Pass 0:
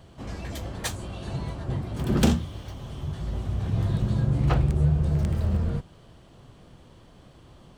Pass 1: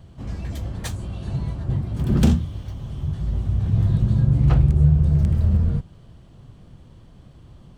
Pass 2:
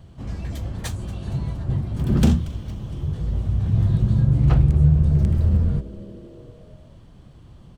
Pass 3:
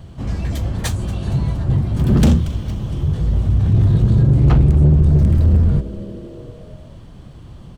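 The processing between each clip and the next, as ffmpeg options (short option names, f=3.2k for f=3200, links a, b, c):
-af "bass=f=250:g=10,treble=f=4k:g=0,volume=-3dB"
-filter_complex "[0:a]asplit=6[a][b][c][d][e][f];[b]adelay=232,afreqshift=-140,volume=-18.5dB[g];[c]adelay=464,afreqshift=-280,volume=-23.5dB[h];[d]adelay=696,afreqshift=-420,volume=-28.6dB[i];[e]adelay=928,afreqshift=-560,volume=-33.6dB[j];[f]adelay=1160,afreqshift=-700,volume=-38.6dB[k];[a][g][h][i][j][k]amix=inputs=6:normalize=0"
-af "asoftclip=type=tanh:threshold=-14.5dB,volume=8dB"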